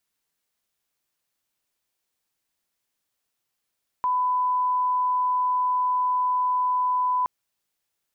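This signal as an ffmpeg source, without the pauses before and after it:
-f lavfi -i "sine=f=1000:d=3.22:r=44100,volume=-1.94dB"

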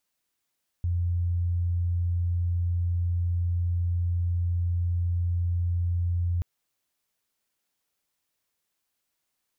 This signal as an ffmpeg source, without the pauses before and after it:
-f lavfi -i "sine=f=87.2:d=5.58:r=44100,volume=-4.94dB"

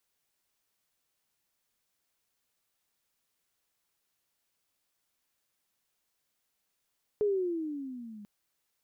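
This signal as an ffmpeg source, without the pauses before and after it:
-f lavfi -i "aevalsrc='pow(10,(-23.5-20.5*t/1.04)/20)*sin(2*PI*427*1.04/(-13*log(2)/12)*(exp(-13*log(2)/12*t/1.04)-1))':d=1.04:s=44100"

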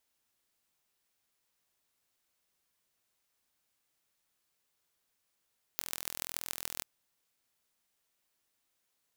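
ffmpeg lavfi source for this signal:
-f lavfi -i "aevalsrc='0.501*eq(mod(n,1058),0)*(0.5+0.5*eq(mod(n,6348),0))':d=1.05:s=44100"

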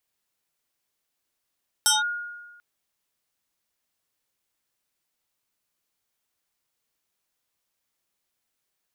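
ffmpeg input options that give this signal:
-f lavfi -i "aevalsrc='0.178*pow(10,-3*t/1.28)*sin(2*PI*1430*t+4.6*clip(1-t/0.17,0,1)*sin(2*PI*1.6*1430*t))':d=0.74:s=44100"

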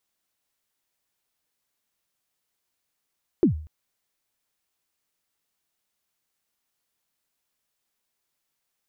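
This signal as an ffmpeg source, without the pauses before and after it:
-f lavfi -i "aevalsrc='0.266*pow(10,-3*t/0.47)*sin(2*PI*(400*0.11/log(77/400)*(exp(log(77/400)*min(t,0.11)/0.11)-1)+77*max(t-0.11,0)))':d=0.24:s=44100"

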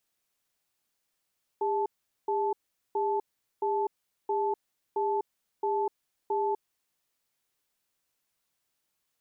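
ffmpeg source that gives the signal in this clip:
-f lavfi -i "aevalsrc='0.0398*(sin(2*PI*404*t)+sin(2*PI*872*t))*clip(min(mod(t,0.67),0.25-mod(t,0.67))/0.005,0,1)':d=5.19:s=44100"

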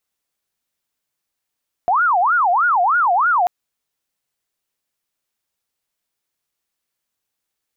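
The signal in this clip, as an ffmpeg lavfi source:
-f lavfi -i "aevalsrc='0.237*sin(2*PI*(1073*t-377/(2*PI*3.2)*sin(2*PI*3.2*t)))':d=1.59:s=44100"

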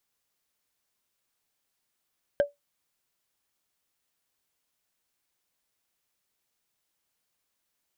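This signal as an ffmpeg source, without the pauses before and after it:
-f lavfi -i "aevalsrc='0.178*pow(10,-3*t/0.16)*sin(2*PI*574*t)+0.0562*pow(10,-3*t/0.047)*sin(2*PI*1582.5*t)+0.0178*pow(10,-3*t/0.021)*sin(2*PI*3101.9*t)+0.00562*pow(10,-3*t/0.012)*sin(2*PI*5127.5*t)+0.00178*pow(10,-3*t/0.007)*sin(2*PI*7657.2*t)':d=0.45:s=44100"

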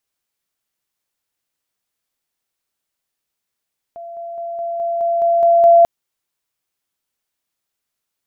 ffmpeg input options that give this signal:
-f lavfi -i "aevalsrc='pow(10,(-29.5+3*floor(t/0.21))/20)*sin(2*PI*681*t)':d=1.89:s=44100"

